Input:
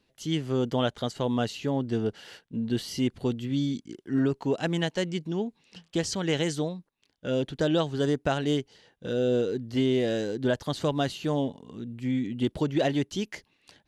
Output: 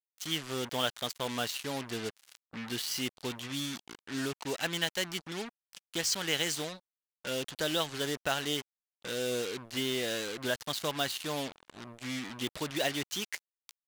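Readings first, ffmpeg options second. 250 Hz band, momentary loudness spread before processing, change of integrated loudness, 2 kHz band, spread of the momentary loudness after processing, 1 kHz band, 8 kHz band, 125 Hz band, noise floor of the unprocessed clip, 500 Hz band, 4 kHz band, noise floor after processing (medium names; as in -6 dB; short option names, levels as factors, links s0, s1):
-11.5 dB, 8 LU, -5.5 dB, +1.5 dB, 10 LU, -3.5 dB, +5.0 dB, -13.0 dB, -72 dBFS, -8.5 dB, +3.0 dB, under -85 dBFS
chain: -af "acrusher=bits=5:mix=0:aa=0.5,tiltshelf=f=760:g=-8.5,volume=0.562"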